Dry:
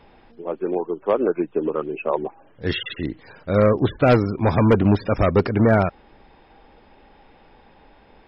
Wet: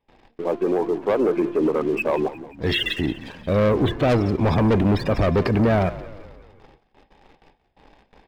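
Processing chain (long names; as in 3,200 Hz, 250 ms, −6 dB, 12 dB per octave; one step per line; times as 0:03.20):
notch filter 1,400 Hz, Q 5.3
hum removal 345.5 Hz, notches 8
noise gate with hold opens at −41 dBFS
leveller curve on the samples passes 2
brickwall limiter −14 dBFS, peak gain reduction 7 dB
on a send: echo with shifted repeats 177 ms, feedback 53%, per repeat −46 Hz, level −16 dB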